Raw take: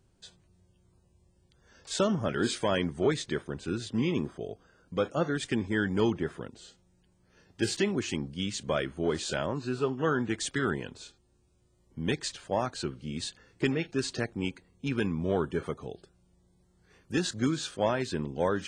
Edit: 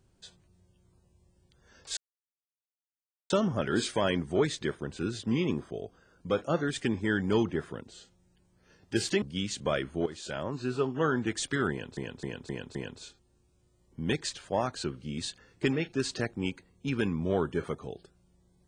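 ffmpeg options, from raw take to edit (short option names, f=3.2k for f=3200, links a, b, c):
-filter_complex "[0:a]asplit=8[a][b][c][d][e][f][g][h];[a]atrim=end=1.97,asetpts=PTS-STARTPTS,afade=t=out:st=1.966:d=0.004:c=hsin,apad=pad_dur=1.33[i];[b]atrim=start=1.97:end=7.892,asetpts=PTS-STARTPTS,afade=t=in:d=0.004:c=hsin[j];[c]atrim=start=8.248:end=9.09,asetpts=PTS-STARTPTS,afade=t=out:st=0.838:d=0.004:c=hsin:silence=0.211349[k];[d]atrim=start=9.09:end=11.002,asetpts=PTS-STARTPTS,afade=t=in:d=0.61:silence=0.211349[l];[e]atrim=start=10.738:end=11.002[m];[f]atrim=start=10.738:end=11.002[n];[g]atrim=start=10.738:end=11.002[o];[h]atrim=start=10.738[p];[i][j]concat=n=2:v=0:a=1[q];[k][l]concat=n=2:v=0:a=1[r];[q][r]acrossfade=d=0.004:c1=hsin:c2=hsin[s];[s][m]acrossfade=d=0.004:c1=hsin:c2=hsin[t];[t][n]acrossfade=d=0.004:c1=hsin:c2=hsin[u];[u][o]acrossfade=d=0.004:c1=hsin:c2=hsin[v];[v][p]acrossfade=d=0.004:c1=hsin:c2=hsin"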